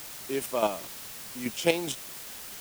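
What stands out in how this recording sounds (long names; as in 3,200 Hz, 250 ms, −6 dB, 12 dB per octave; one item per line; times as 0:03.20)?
chopped level 4.8 Hz, depth 60%, duty 20%
a quantiser's noise floor 8 bits, dither triangular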